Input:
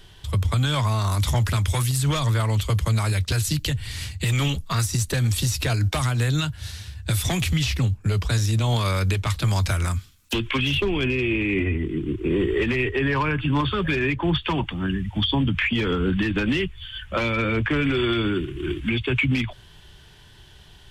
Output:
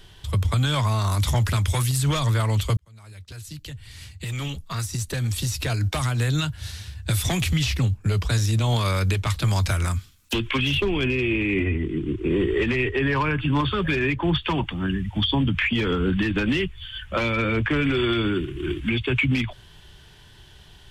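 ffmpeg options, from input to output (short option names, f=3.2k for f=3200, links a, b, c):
-filter_complex "[0:a]asettb=1/sr,asplit=3[a][b][c];[a]atrim=end=11.674[d];[b]atrim=start=11.67:end=13.08,asetpts=PTS-STARTPTS,afade=t=in:d=0.004:c=qsin,afade=t=out:st=1.406:d=0.004:c=qsin,lowpass=10k[e];[c]atrim=start=13.076[f];[d][e]acrossfade=d=0.004:c1=hsin:c2=qsin[g];[g][f]acrossfade=d=0.004:c1=qsin:c2=hsin,asplit=2[h][i];[h]atrim=end=2.77,asetpts=PTS-STARTPTS,afade=t=out:st=2.766:d=0.004:c=hsin[j];[i]atrim=start=2.77,asetpts=PTS-STARTPTS,afade=t=in:d=3.79[k];[j][k]concat=n=2:v=0:a=1"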